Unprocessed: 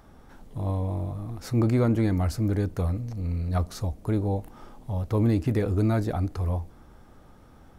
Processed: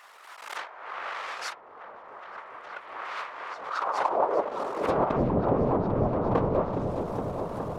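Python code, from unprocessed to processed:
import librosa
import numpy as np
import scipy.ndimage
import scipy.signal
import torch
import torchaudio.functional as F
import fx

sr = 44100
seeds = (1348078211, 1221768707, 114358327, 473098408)

y = fx.halfwave_hold(x, sr)
y = fx.env_lowpass_down(y, sr, base_hz=310.0, full_db=-16.5)
y = fx.band_shelf(y, sr, hz=760.0, db=13.5, octaves=1.7)
y = fx.notch(y, sr, hz=790.0, q=14.0)
y = fx.low_shelf(y, sr, hz=100.0, db=-11.0, at=(3.51, 5.78))
y = fx.over_compress(y, sr, threshold_db=-23.0, ratio=-0.5)
y = fx.filter_sweep_highpass(y, sr, from_hz=1800.0, to_hz=150.0, start_s=3.53, end_s=5.18, q=1.8)
y = fx.whisperise(y, sr, seeds[0])
y = fx.echo_opening(y, sr, ms=416, hz=400, octaves=1, feedback_pct=70, wet_db=-3)
y = fx.pre_swell(y, sr, db_per_s=68.0)
y = F.gain(torch.from_numpy(y), -3.0).numpy()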